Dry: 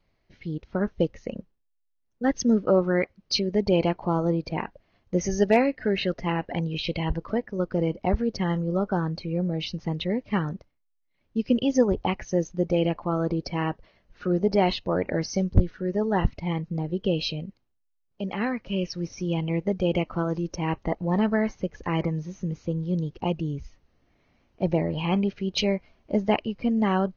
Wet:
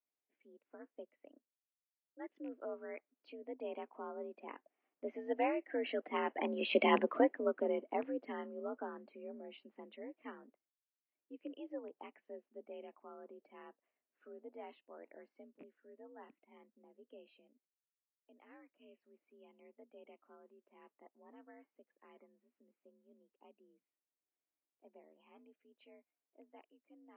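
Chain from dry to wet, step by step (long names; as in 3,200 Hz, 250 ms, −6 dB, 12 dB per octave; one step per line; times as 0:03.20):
loose part that buzzes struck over −21 dBFS, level −26 dBFS
source passing by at 0:06.91, 7 m/s, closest 1.5 metres
single-sideband voice off tune +55 Hz 220–2,800 Hz
level +3 dB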